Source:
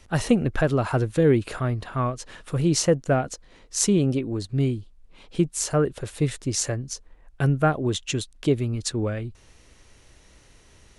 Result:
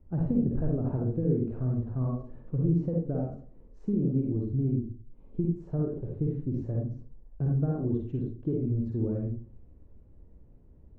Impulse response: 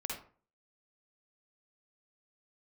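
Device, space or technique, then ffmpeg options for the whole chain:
television next door: -filter_complex "[0:a]acompressor=threshold=-21dB:ratio=5,lowpass=330[a];[1:a]atrim=start_sample=2205[b];[a][b]afir=irnorm=-1:irlink=0"

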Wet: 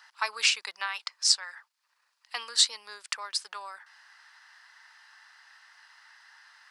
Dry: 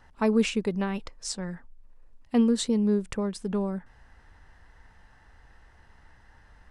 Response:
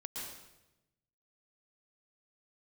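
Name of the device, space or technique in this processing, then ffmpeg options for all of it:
headphones lying on a table: -af "highpass=f=1.1k:w=0.5412,highpass=f=1.1k:w=1.3066,equalizer=f=4.7k:t=o:w=0.56:g=9.5,volume=6.5dB"

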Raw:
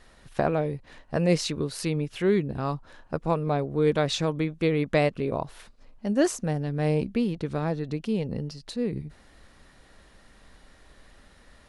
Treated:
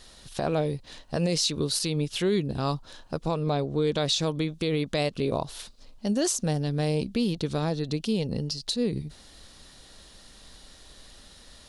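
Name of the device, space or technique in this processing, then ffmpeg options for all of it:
over-bright horn tweeter: -filter_complex "[0:a]highshelf=f=2.8k:t=q:w=1.5:g=9,alimiter=limit=-17.5dB:level=0:latency=1:release=103,asettb=1/sr,asplit=3[a][b][c];[a]atrim=end=3.284[d];[b]atrim=start=3.28:end=4.02,asetpts=PTS-STARTPTS,afade=t=in:d=0.004:c=qsin,afade=t=out:st=0.736:d=0.004:c=qsin,lowpass=f=8.3k:w=0.5412,lowpass=f=8.3k:w=1.3066[e];[c]atrim=start=4.016[f];[d][e]acrossfade=d=0.004:c1=hsin:c2=qsin[g];[g][f]acrossfade=d=0.004:c1=qsin:c2=hsin,volume=1.5dB"

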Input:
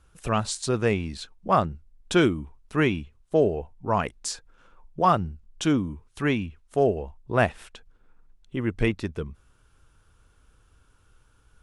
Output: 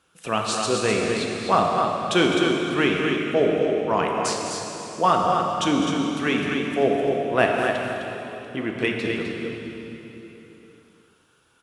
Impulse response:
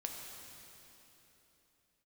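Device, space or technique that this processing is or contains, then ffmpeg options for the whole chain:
stadium PA: -filter_complex "[0:a]highpass=200,equalizer=f=3.1k:t=o:w=1.1:g=5,aecho=1:1:207|256.6:0.251|0.501[a];[1:a]atrim=start_sample=2205[b];[a][b]afir=irnorm=-1:irlink=0,volume=3.5dB"

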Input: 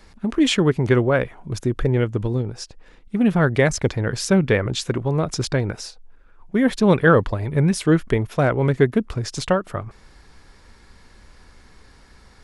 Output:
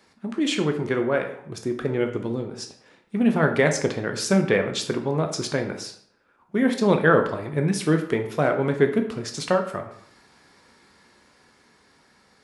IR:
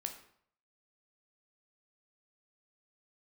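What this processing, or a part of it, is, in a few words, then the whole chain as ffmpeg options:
far laptop microphone: -filter_complex "[1:a]atrim=start_sample=2205[a];[0:a][a]afir=irnorm=-1:irlink=0,highpass=180,dynaudnorm=f=210:g=17:m=11.5dB,volume=-3.5dB"

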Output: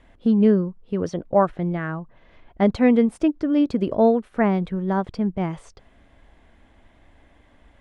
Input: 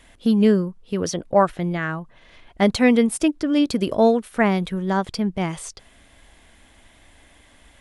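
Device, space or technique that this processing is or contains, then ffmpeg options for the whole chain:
through cloth: -af "lowpass=8.7k,highshelf=f=2.6k:g=-18"

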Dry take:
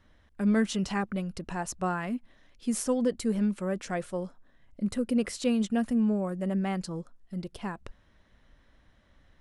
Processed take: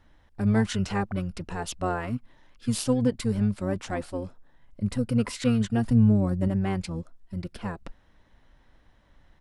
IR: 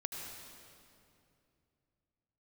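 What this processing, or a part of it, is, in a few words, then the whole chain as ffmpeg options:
octave pedal: -filter_complex "[0:a]asplit=2[a][b];[b]asetrate=22050,aresample=44100,atempo=2,volume=-2dB[c];[a][c]amix=inputs=2:normalize=0,asettb=1/sr,asplit=3[d][e][f];[d]atrim=end=5.854[g];[e]atrim=start=5.85:end=6.48,asetpts=PTS-STARTPTS,afade=t=in:d=0.004:c=qsin,afade=t=out:st=0.626:d=0.004:c=qsin,lowshelf=f=190:g=7.5[h];[f]atrim=start=6.476[i];[g][h]acrossfade=d=0.004:c1=hsin:c2=qsin[j];[j][i]acrossfade=d=0.004:c1=qsin:c2=hsin"

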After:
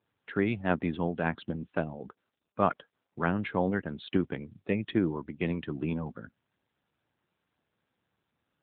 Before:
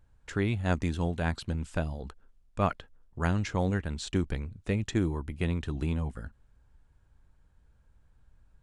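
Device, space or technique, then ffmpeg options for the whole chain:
mobile call with aggressive noise cancelling: -af "highpass=180,afftdn=nr=18:nf=-47,volume=3dB" -ar 8000 -c:a libopencore_amrnb -b:a 10200

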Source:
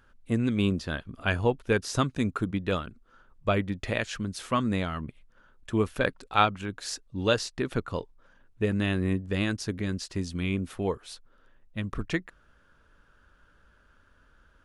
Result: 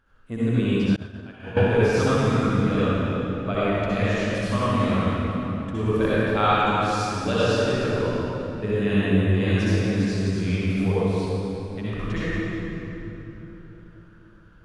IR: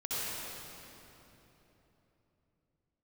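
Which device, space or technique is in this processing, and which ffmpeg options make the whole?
swimming-pool hall: -filter_complex "[1:a]atrim=start_sample=2205[a];[0:a][a]afir=irnorm=-1:irlink=0,highshelf=f=5.1k:g=-7,asettb=1/sr,asplit=3[b][c][d];[b]atrim=end=0.964[e];[c]atrim=start=0.96:end=1.57,asetpts=PTS-STARTPTS,afade=t=in:d=0.004:c=qsin,afade=t=out:st=0.606:d=0.004:c=qsin,agate=range=-33dB:threshold=-11dB:ratio=3:detection=peak[f];[d]atrim=start=1.566[g];[e][f]acrossfade=d=0.004:c1=hsin:c2=qsin[h];[h][g]acrossfade=d=0.004:c1=qsin:c2=hsin"

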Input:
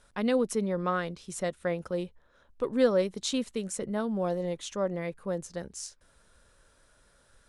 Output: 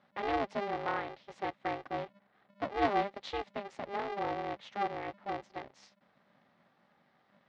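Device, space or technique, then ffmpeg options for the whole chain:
ring modulator pedal into a guitar cabinet: -af "aeval=exprs='val(0)*sgn(sin(2*PI*200*n/s))':c=same,highpass=94,equalizer=f=550:t=q:w=4:g=7,equalizer=f=820:t=q:w=4:g=8,equalizer=f=1.2k:t=q:w=4:g=3,equalizer=f=2k:t=q:w=4:g=6,lowpass=f=4.2k:w=0.5412,lowpass=f=4.2k:w=1.3066,volume=-9dB"

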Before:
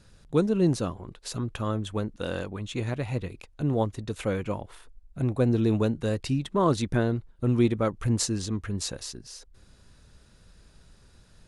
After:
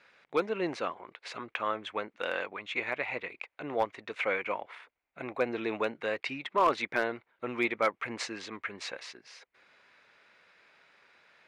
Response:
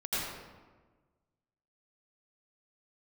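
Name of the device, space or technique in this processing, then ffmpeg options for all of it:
megaphone: -af "highpass=680,lowpass=2.6k,equalizer=f=2.2k:t=o:w=0.45:g=11.5,asoftclip=type=hard:threshold=-21dB,volume=3.5dB"

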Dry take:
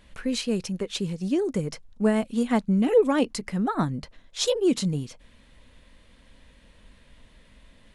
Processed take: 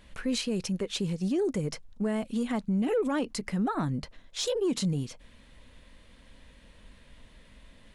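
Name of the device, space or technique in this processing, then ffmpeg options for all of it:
soft clipper into limiter: -af "asoftclip=type=tanh:threshold=-13dB,alimiter=limit=-22dB:level=0:latency=1:release=56"

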